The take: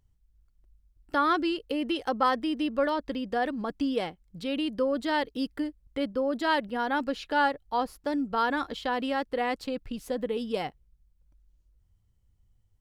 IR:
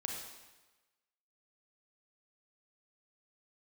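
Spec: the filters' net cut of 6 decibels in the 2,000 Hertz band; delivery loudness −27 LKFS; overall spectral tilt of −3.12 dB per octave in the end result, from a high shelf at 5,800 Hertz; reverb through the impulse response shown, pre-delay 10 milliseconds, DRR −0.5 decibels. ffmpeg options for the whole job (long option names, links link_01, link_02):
-filter_complex "[0:a]equalizer=frequency=2000:width_type=o:gain=-8,highshelf=frequency=5800:gain=-7,asplit=2[link_01][link_02];[1:a]atrim=start_sample=2205,adelay=10[link_03];[link_02][link_03]afir=irnorm=-1:irlink=0,volume=0dB[link_04];[link_01][link_04]amix=inputs=2:normalize=0,volume=0.5dB"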